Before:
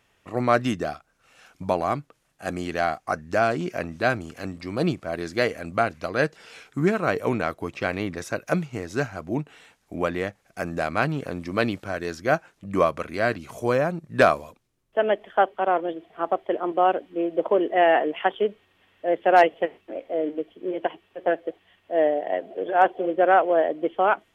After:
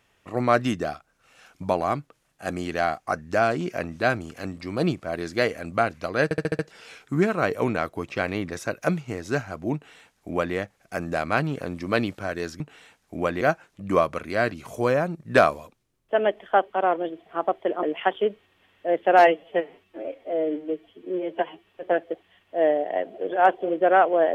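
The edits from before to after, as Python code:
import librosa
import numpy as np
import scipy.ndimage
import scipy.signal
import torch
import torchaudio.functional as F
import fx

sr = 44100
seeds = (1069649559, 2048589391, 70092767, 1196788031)

y = fx.edit(x, sr, fx.stutter(start_s=6.24, slice_s=0.07, count=6),
    fx.duplicate(start_s=9.39, length_s=0.81, to_s=12.25),
    fx.cut(start_s=16.67, length_s=1.35),
    fx.stretch_span(start_s=19.38, length_s=1.65, factor=1.5), tone=tone)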